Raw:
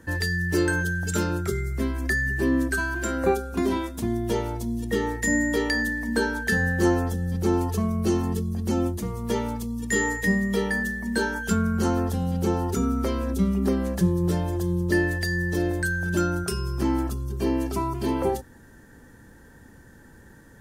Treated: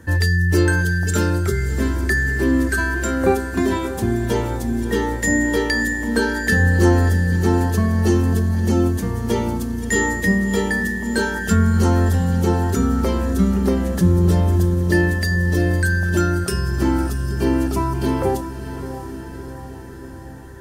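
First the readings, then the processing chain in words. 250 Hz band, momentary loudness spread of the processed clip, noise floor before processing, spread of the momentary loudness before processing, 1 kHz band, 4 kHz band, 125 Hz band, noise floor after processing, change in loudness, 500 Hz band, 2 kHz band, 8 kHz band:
+5.5 dB, 8 LU, -50 dBFS, 5 LU, +5.0 dB, +5.0 dB, +9.0 dB, -34 dBFS, +6.5 dB, +5.0 dB, +5.0 dB, +5.0 dB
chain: peaking EQ 90 Hz +7.5 dB 0.67 oct; on a send: echo that smears into a reverb 648 ms, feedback 61%, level -11 dB; on the sum: trim +4.5 dB

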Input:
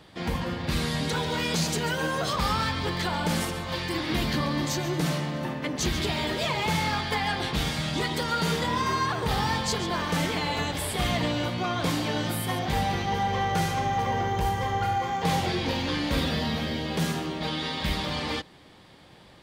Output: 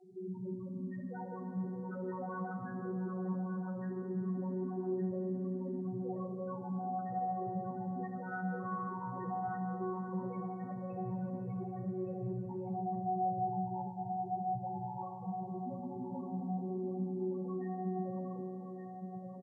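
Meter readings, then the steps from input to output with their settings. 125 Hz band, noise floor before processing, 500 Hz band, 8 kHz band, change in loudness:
-11.5 dB, -52 dBFS, -9.0 dB, under -40 dB, -11.5 dB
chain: vocoder on a held chord bare fifth, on B2; reverb removal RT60 1.5 s; high-pass 360 Hz 6 dB/octave; peaking EQ 5.4 kHz -3.5 dB 1.1 oct; in parallel at +2.5 dB: compression 12:1, threshold -47 dBFS, peak gain reduction 20 dB; on the sum: saturation -33.5 dBFS, distortion -10 dB; loudest bins only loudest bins 2; distance through air 110 m; doubling 15 ms -12 dB; on a send: feedback delay 1167 ms, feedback 16%, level -7 dB; on the sum: Schroeder reverb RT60 3.3 s, combs from 27 ms, DRR 3 dB; Nellymoser 44 kbps 22.05 kHz

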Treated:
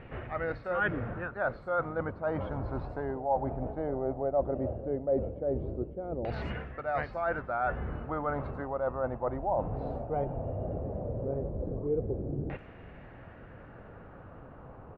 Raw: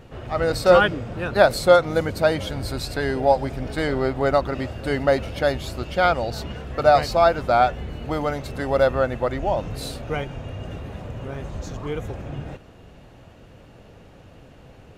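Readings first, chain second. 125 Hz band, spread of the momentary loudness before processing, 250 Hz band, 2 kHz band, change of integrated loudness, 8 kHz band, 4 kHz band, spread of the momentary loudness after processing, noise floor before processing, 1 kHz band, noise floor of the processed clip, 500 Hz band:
-7.5 dB, 17 LU, -8.5 dB, -11.0 dB, -12.0 dB, under -40 dB, under -25 dB, 19 LU, -48 dBFS, -12.0 dB, -50 dBFS, -12.0 dB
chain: treble shelf 4.7 kHz -5.5 dB; reverse; compression 12:1, threshold -28 dBFS, peak gain reduction 20 dB; reverse; LFO low-pass saw down 0.16 Hz 380–2200 Hz; bands offset in time lows, highs 90 ms, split 5.8 kHz; trim -2.5 dB

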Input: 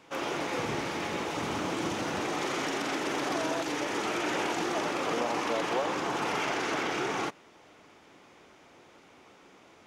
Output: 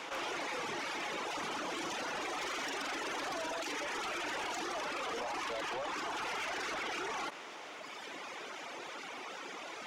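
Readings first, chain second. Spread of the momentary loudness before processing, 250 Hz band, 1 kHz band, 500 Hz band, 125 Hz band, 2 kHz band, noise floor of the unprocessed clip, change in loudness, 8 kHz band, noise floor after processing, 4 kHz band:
3 LU, -12.0 dB, -6.0 dB, -9.0 dB, -16.5 dB, -4.0 dB, -57 dBFS, -7.5 dB, -4.5 dB, -47 dBFS, -3.5 dB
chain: reverb removal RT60 1.6 s; frequency weighting A; saturation -33 dBFS, distortion -13 dB; level flattener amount 70%; trim -2 dB

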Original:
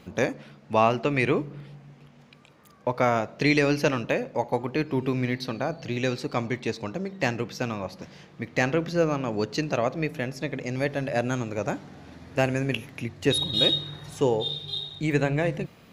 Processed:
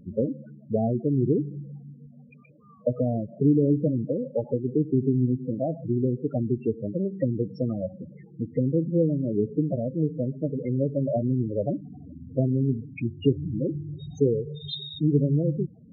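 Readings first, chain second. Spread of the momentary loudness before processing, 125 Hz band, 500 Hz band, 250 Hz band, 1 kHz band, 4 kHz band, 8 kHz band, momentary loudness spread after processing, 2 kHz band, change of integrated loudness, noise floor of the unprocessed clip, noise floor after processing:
12 LU, +4.5 dB, -0.5 dB, +3.5 dB, -14.0 dB, under -10 dB, under -20 dB, 11 LU, under -20 dB, 0.0 dB, -53 dBFS, -50 dBFS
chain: low-pass that closes with the level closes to 370 Hz, closed at -22 dBFS; loudest bins only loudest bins 8; trim +5 dB

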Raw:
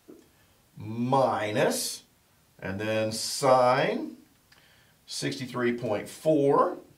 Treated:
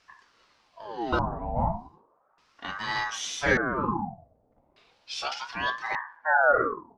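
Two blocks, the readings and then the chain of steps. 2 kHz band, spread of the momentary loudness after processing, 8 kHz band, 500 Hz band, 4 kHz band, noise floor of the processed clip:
+8.0 dB, 16 LU, -5.0 dB, -5.5 dB, -1.0 dB, -67 dBFS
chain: LFO low-pass square 0.42 Hz 390–3900 Hz; ring modulator with a swept carrier 880 Hz, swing 60%, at 0.34 Hz

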